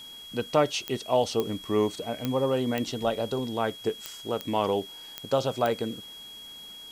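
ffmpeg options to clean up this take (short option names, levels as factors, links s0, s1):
-af "adeclick=t=4,bandreject=f=3300:w=30,afwtdn=0.0022"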